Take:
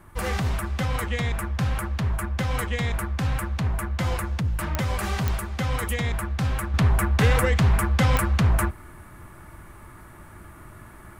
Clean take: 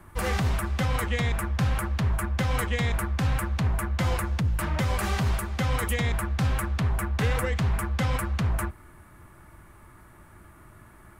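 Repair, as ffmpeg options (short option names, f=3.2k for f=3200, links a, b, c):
-af "adeclick=t=4,agate=range=-21dB:threshold=-37dB,asetnsamples=n=441:p=0,asendcmd='6.74 volume volume -6dB',volume=0dB"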